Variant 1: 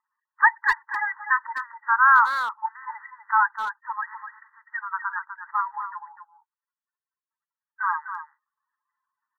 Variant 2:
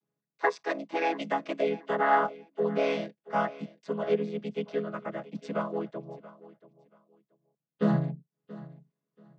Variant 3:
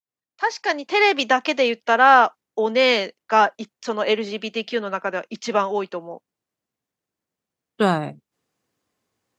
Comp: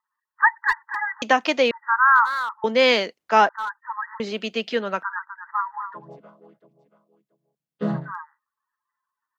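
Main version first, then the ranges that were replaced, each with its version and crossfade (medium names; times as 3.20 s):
1
1.22–1.71 s: from 3
2.64–3.49 s: from 3
4.20–5.03 s: from 3
5.99–8.03 s: from 2, crossfade 0.24 s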